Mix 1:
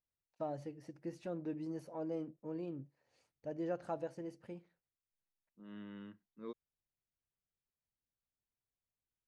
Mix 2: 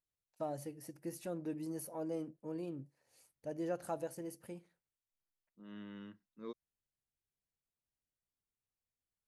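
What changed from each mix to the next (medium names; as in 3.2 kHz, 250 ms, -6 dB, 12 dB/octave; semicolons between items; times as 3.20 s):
master: remove distance through air 140 m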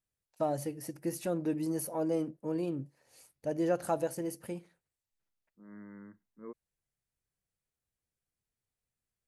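first voice +8.5 dB; second voice: add brick-wall FIR low-pass 2.2 kHz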